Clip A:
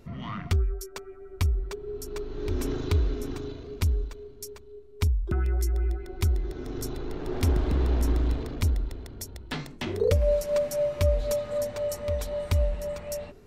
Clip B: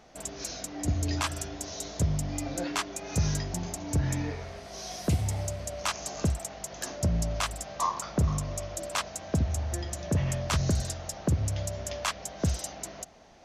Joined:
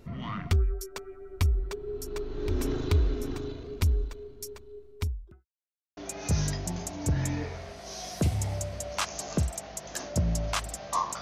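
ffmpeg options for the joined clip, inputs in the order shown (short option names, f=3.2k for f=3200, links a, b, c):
-filter_complex "[0:a]apad=whole_dur=11.21,atrim=end=11.21,asplit=2[a][b];[a]atrim=end=5.46,asetpts=PTS-STARTPTS,afade=t=out:st=4.88:d=0.58:c=qua[c];[b]atrim=start=5.46:end=5.97,asetpts=PTS-STARTPTS,volume=0[d];[1:a]atrim=start=2.84:end=8.08,asetpts=PTS-STARTPTS,afade=t=in:d=0.004:c=hsin[e];[c][d][e]concat=n=3:v=0:a=1"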